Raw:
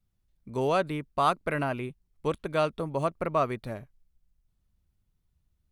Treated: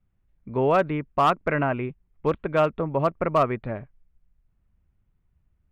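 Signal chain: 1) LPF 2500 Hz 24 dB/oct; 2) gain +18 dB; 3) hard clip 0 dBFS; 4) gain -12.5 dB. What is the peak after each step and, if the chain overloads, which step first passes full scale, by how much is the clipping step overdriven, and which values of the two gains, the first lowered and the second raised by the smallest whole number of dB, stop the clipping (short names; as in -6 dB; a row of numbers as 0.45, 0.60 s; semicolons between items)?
-12.0, +6.0, 0.0, -12.5 dBFS; step 2, 6.0 dB; step 2 +12 dB, step 4 -6.5 dB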